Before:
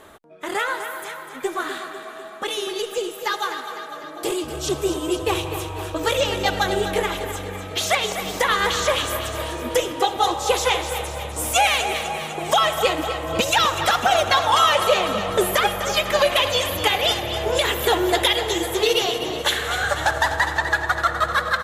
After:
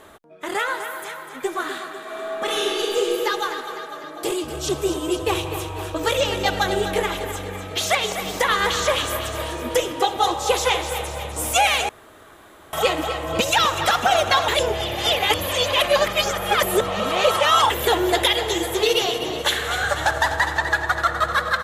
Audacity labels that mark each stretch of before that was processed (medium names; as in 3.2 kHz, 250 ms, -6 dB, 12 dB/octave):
2.020000	3.200000	reverb throw, RT60 2.2 s, DRR -3 dB
11.890000	12.730000	room tone
14.480000	17.700000	reverse